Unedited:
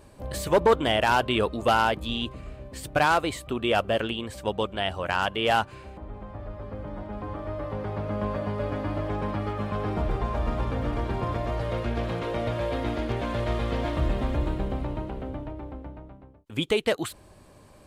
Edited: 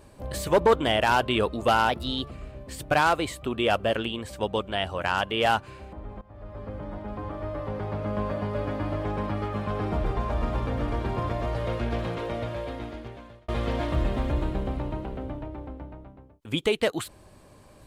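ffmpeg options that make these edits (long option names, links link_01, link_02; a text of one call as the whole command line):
ffmpeg -i in.wav -filter_complex "[0:a]asplit=5[link_01][link_02][link_03][link_04][link_05];[link_01]atrim=end=1.894[link_06];[link_02]atrim=start=1.89:end=2.36,asetpts=PTS-STARTPTS,asetrate=48951,aresample=44100[link_07];[link_03]atrim=start=2.356:end=6.26,asetpts=PTS-STARTPTS,afade=type=out:start_time=3.9:duration=0.004:curve=hsin:silence=0.11885[link_08];[link_04]atrim=start=6.26:end=13.53,asetpts=PTS-STARTPTS,afade=type=in:duration=0.41:silence=0.11885,afade=type=out:start_time=5.75:duration=1.52[link_09];[link_05]atrim=start=13.53,asetpts=PTS-STARTPTS,afade=type=in:duration=0.004:curve=hsin[link_10];[link_06][link_07]acrossfade=duration=0.004:curve1=hsin:curve2=hsin[link_11];[link_08][link_09][link_10]concat=n=3:v=0:a=1[link_12];[link_11][link_12]acrossfade=duration=0.004:curve1=hsin:curve2=hsin" out.wav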